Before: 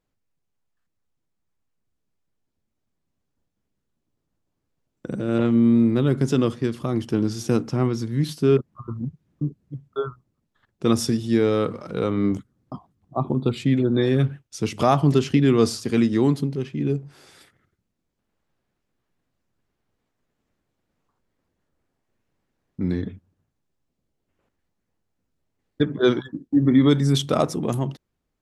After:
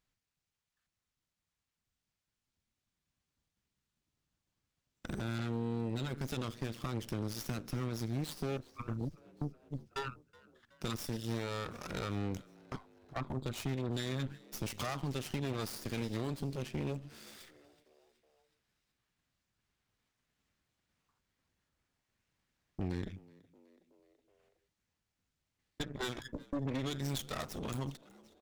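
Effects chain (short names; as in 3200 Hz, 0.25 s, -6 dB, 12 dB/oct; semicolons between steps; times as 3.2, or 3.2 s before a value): passive tone stack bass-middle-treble 5-5-5; compressor 5:1, threshold -45 dBFS, peak gain reduction 15 dB; soft clip -35 dBFS, distortion -24 dB; added harmonics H 4 -12 dB, 8 -19 dB, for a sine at -35.5 dBFS; frequency-shifting echo 0.372 s, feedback 60%, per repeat +77 Hz, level -24 dB; running maximum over 3 samples; gain +9 dB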